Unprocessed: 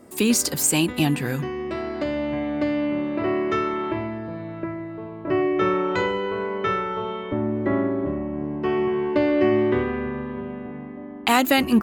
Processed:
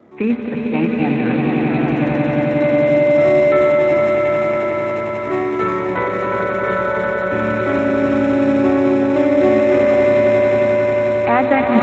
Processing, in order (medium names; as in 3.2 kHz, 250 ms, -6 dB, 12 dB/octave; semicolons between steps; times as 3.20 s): rattle on loud lows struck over -25 dBFS, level -21 dBFS; dynamic bell 780 Hz, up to +4 dB, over -44 dBFS, Q 6.7; steep low-pass 2.5 kHz 72 dB/octave; hum notches 50/100/150/200/250/300/350/400 Hz; echo with a slow build-up 90 ms, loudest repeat 8, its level -5.5 dB; trim +2 dB; Speex 17 kbps 16 kHz